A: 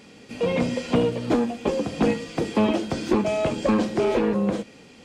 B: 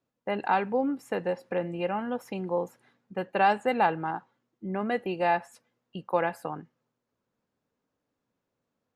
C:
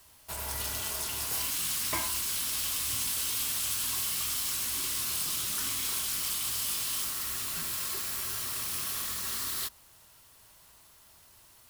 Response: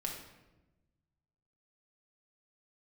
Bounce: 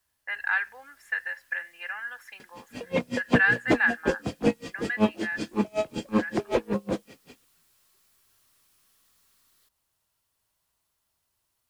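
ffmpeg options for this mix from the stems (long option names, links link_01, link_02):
-filter_complex "[0:a]aeval=exprs='val(0)*pow(10,-36*(0.5-0.5*cos(2*PI*5.3*n/s))/20)':channel_layout=same,adelay=2400,volume=2dB[link_01];[1:a]highpass=frequency=1700:width_type=q:width=9.1,volume=-4.5dB,afade=type=out:start_time=4.58:duration=0.79:silence=0.251189[link_02];[2:a]acompressor=threshold=-34dB:ratio=6,aeval=exprs='(tanh(178*val(0)+0.15)-tanh(0.15))/178':channel_layout=same,volume=-19dB[link_03];[link_01][link_02][link_03]amix=inputs=3:normalize=0"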